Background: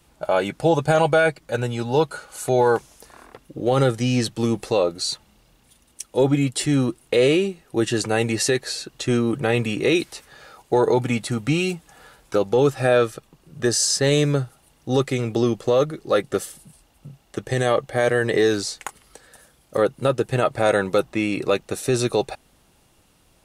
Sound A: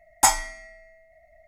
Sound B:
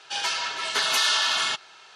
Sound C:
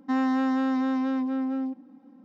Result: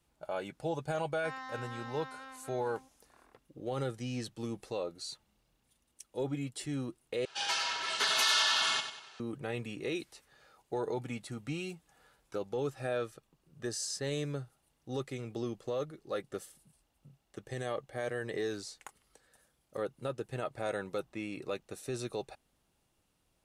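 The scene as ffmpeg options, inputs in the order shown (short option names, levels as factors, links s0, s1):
-filter_complex "[0:a]volume=0.141[s0];[3:a]highpass=1100[s1];[2:a]aecho=1:1:95|190|285|380:0.355|0.138|0.054|0.021[s2];[s0]asplit=2[s3][s4];[s3]atrim=end=7.254[s5];[s2]atrim=end=1.95,asetpts=PTS-STARTPTS,volume=0.501[s6];[s4]atrim=start=9.196[s7];[s1]atrim=end=2.24,asetpts=PTS-STARTPTS,volume=0.422,afade=t=in:d=0.004:c=hsin,afade=t=out:st=2.236:d=0.004:c=hsin,adelay=1150[s8];[s5][s6]acrossfade=d=0.004:c1=hsin:c2=hsin[s9];[s9][s7]acrossfade=d=0.004:c1=hsin:c2=hsin[s10];[s10][s8]amix=inputs=2:normalize=0"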